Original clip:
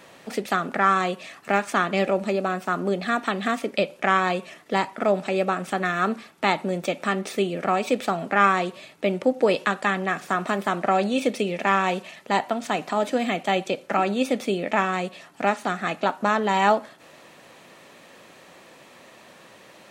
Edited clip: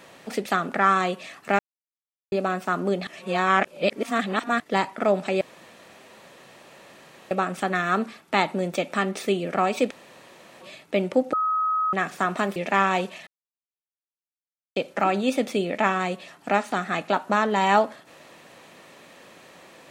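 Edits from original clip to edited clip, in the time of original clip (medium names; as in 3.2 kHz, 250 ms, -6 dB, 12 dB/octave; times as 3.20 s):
1.59–2.32 s: mute
3.07–4.60 s: reverse
5.41 s: insert room tone 1.90 s
8.01–8.71 s: room tone
9.43–10.03 s: bleep 1.27 kHz -20.5 dBFS
10.66–11.49 s: delete
12.20–13.69 s: mute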